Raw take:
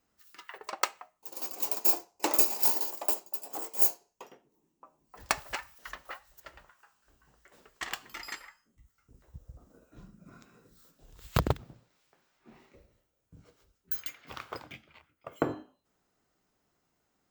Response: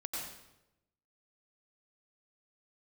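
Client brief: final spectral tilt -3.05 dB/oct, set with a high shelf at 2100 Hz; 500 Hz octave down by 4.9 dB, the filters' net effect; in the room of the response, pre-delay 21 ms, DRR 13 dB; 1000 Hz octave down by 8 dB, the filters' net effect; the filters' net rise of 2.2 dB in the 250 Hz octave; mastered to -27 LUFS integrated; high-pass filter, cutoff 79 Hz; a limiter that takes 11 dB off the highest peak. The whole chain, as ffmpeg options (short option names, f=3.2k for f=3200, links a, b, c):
-filter_complex "[0:a]highpass=79,equalizer=f=250:t=o:g=6,equalizer=f=500:t=o:g=-6,equalizer=f=1k:t=o:g=-7,highshelf=f=2.1k:g=-7.5,alimiter=level_in=0.5dB:limit=-24dB:level=0:latency=1,volume=-0.5dB,asplit=2[a][b];[1:a]atrim=start_sample=2205,adelay=21[c];[b][c]afir=irnorm=-1:irlink=0,volume=-14.5dB[d];[a][d]amix=inputs=2:normalize=0,volume=14dB"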